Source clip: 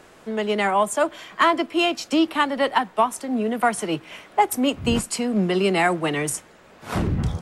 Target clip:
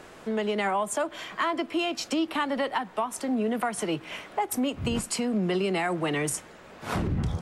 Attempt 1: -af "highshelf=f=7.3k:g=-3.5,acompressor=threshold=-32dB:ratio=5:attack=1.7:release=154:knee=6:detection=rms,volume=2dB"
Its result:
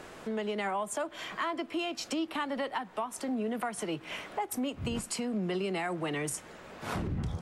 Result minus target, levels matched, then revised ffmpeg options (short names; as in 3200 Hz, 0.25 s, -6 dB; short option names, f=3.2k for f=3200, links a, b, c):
compressor: peak gain reduction +6 dB
-af "highshelf=f=7.3k:g=-3.5,acompressor=threshold=-24.5dB:ratio=5:attack=1.7:release=154:knee=6:detection=rms,volume=2dB"